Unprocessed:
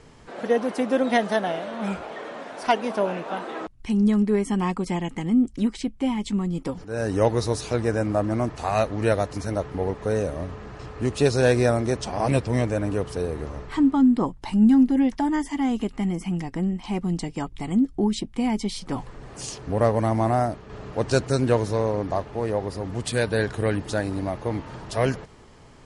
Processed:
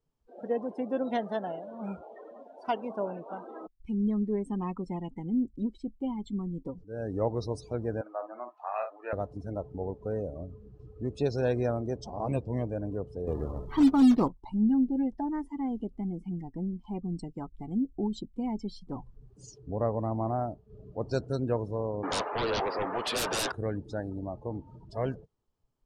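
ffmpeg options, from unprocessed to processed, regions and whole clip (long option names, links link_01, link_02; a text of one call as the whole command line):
ffmpeg -i in.wav -filter_complex "[0:a]asettb=1/sr,asplit=3[link_01][link_02][link_03];[link_01]atrim=end=8.014[link_04];[link_02]atrim=start=8.01:end=9.13,asetpts=PTS-STARTPTS,afade=type=in:duration=0.004:curve=qsin,afade=type=out:start_time=1.116:duration=0.004:curve=qsin,highpass=740,lowpass=2800,equalizer=frequency=1700:width_type=o:width=2.3:gain=3.5,asplit=2[link_05][link_06];[link_06]adelay=50,volume=-7dB[link_07];[link_05][link_07]amix=inputs=2:normalize=0,atrim=end_sample=49392[link_08];[link_03]atrim=start=9.126[link_09];[link_04][link_08]acrossfade=duration=0.004:curve1=hsin:curve2=qsin[link_10];[link_10][link_09]acrossfade=duration=0.004:curve1=qsin:curve2=hsin,asettb=1/sr,asplit=3[link_11][link_12][link_13];[link_11]atrim=end=13.274[link_14];[link_12]atrim=start=13.27:end=14.28,asetpts=PTS-STARTPTS,afade=type=in:duration=0.004:curve=qsin,afade=type=out:start_time=1.006:duration=0.004:curve=qsin,lowpass=frequency=6000:width=0.5412,lowpass=frequency=6000:width=1.3066,acrusher=bits=3:mode=log:mix=0:aa=0.000001,acontrast=85[link_15];[link_13]atrim=start=14.276[link_16];[link_14][link_15]acrossfade=duration=0.004:curve1=hsin:curve2=qsin[link_17];[link_17][link_16]acrossfade=duration=0.004:curve1=qsin:curve2=hsin,asettb=1/sr,asplit=3[link_18][link_19][link_20];[link_18]atrim=end=22.034[link_21];[link_19]atrim=start=22.03:end=23.52,asetpts=PTS-STARTPTS,afade=type=in:duration=0.004:curve=qsin,afade=type=out:start_time=1.486:duration=0.004:curve=qsin,highpass=770,lowpass=2300,aeval=exprs='0.158*sin(PI/2*10*val(0)/0.158)':channel_layout=same[link_22];[link_20]atrim=start=23.516[link_23];[link_21][link_22]acrossfade=duration=0.004:curve1=hsin:curve2=qsin[link_24];[link_24][link_23]acrossfade=duration=0.004:curve1=qsin:curve2=hsin,afftdn=noise_reduction=26:noise_floor=-31,equalizer=frequency=2000:width=1.9:gain=-8.5,volume=-8.5dB" out.wav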